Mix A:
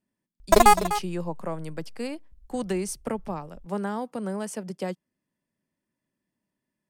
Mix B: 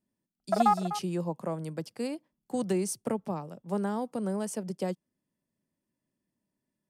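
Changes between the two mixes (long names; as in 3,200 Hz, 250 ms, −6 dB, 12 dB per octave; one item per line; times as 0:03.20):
background: add pair of resonant band-passes 1,000 Hz, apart 0.75 octaves
master: add parametric band 1,900 Hz −6 dB 2 octaves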